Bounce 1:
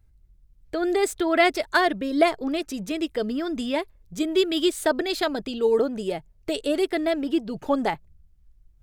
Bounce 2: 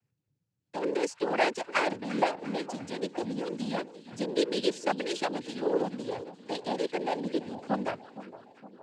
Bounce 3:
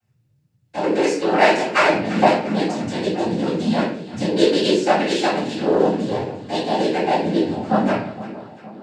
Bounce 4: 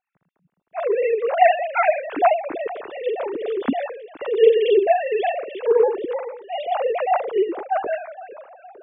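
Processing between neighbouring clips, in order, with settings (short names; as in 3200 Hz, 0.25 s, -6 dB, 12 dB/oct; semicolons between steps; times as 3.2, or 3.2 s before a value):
noise vocoder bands 8; split-band echo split 1200 Hz, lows 0.463 s, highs 0.346 s, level -15 dB; gain -7 dB
bell 99 Hz +3 dB; reverb RT60 0.55 s, pre-delay 3 ms, DRR -10.5 dB; gain -1 dB
sine-wave speech; gain -1.5 dB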